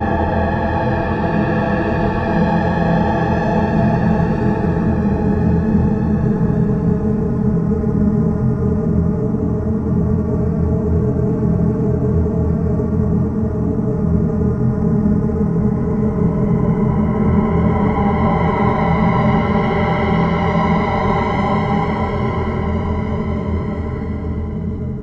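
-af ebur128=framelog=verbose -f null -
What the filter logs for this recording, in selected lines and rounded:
Integrated loudness:
  I:         -17.0 LUFS
  Threshold: -26.9 LUFS
Loudness range:
  LRA:         1.9 LU
  Threshold: -36.8 LUFS
  LRA low:   -17.5 LUFS
  LRA high:  -15.6 LUFS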